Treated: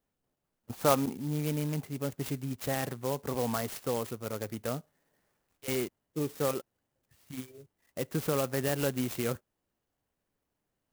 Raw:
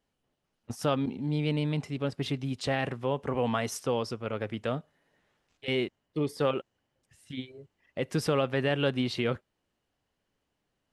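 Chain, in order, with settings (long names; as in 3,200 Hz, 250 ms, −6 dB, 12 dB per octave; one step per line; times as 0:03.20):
0:00.72–0:01.14: parametric band 940 Hz +9 dB 2.2 octaves
converter with an unsteady clock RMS 0.073 ms
level −3 dB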